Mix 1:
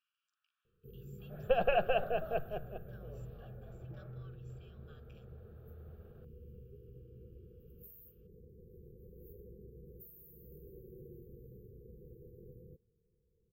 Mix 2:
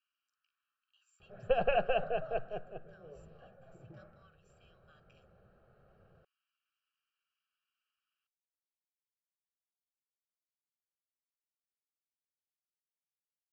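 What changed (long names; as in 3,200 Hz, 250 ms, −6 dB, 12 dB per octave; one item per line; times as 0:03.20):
first sound: muted
master: add Butterworth band-reject 3,500 Hz, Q 7.1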